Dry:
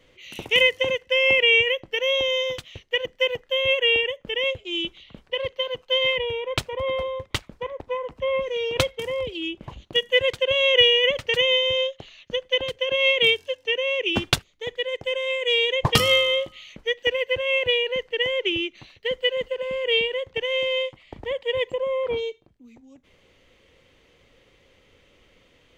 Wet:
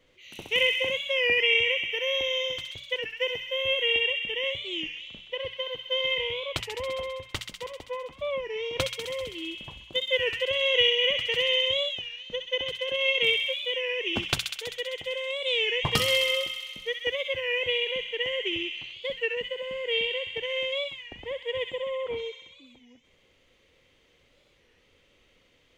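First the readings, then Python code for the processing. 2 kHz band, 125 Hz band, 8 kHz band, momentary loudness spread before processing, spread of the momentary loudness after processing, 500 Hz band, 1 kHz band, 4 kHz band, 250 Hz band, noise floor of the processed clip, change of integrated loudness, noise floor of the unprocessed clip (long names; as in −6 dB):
−4.5 dB, −7.0 dB, −3.0 dB, 13 LU, 13 LU, −6.5 dB, −6.5 dB, −4.0 dB, −6.5 dB, −64 dBFS, −4.5 dB, −60 dBFS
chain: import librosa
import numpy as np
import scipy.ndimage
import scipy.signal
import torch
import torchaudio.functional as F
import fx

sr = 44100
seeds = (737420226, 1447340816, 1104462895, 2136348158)

y = fx.hum_notches(x, sr, base_hz=60, count=3)
y = fx.echo_wet_highpass(y, sr, ms=65, feedback_pct=78, hz=2200.0, wet_db=-3.5)
y = fx.record_warp(y, sr, rpm=33.33, depth_cents=160.0)
y = F.gain(torch.from_numpy(y), -6.5).numpy()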